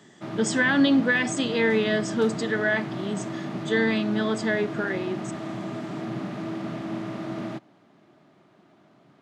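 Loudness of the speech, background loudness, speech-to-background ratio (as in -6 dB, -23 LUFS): -24.5 LUFS, -33.0 LUFS, 8.5 dB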